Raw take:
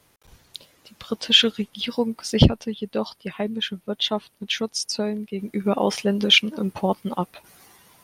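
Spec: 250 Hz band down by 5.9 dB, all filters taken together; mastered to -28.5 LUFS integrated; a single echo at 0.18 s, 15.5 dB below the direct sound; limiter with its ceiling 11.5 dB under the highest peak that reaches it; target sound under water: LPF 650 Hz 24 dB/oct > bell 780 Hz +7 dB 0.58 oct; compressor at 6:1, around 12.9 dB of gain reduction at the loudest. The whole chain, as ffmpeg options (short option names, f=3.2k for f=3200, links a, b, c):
-af "equalizer=f=250:t=o:g=-8,acompressor=threshold=-25dB:ratio=6,alimiter=level_in=1.5dB:limit=-24dB:level=0:latency=1,volume=-1.5dB,lowpass=f=650:w=0.5412,lowpass=f=650:w=1.3066,equalizer=f=780:t=o:w=0.58:g=7,aecho=1:1:180:0.168,volume=9.5dB"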